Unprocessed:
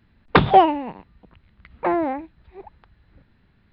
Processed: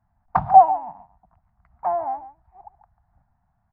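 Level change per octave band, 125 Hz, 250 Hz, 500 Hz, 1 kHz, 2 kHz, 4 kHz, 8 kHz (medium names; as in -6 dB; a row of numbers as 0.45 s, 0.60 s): -10.0 dB, -18.5 dB, -4.5 dB, +2.5 dB, under -15 dB, under -30 dB, no reading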